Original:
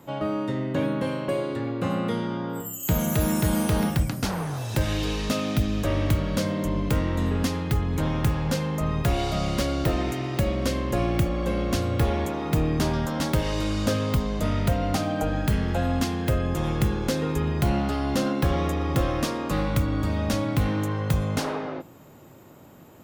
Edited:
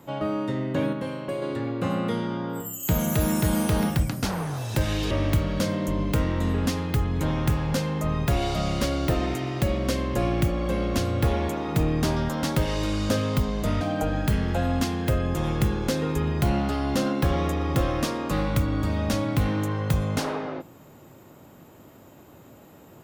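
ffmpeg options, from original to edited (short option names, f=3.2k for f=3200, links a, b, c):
-filter_complex "[0:a]asplit=5[a][b][c][d][e];[a]atrim=end=0.932[f];[b]atrim=start=0.928:end=1.422,asetpts=PTS-STARTPTS,volume=-4dB[g];[c]atrim=start=1.418:end=5.112[h];[d]atrim=start=5.878:end=14.582[i];[e]atrim=start=15.008[j];[f][g]acrossfade=d=0.004:c1=hsin:c2=hsin[k];[k][h]acrossfade=d=0.004:c1=hsin:c2=hsin[l];[l][i]acrossfade=d=0.004:c1=hsin:c2=hsin[m];[m][j]acrossfade=d=0.004:c1=hsin:c2=hsin"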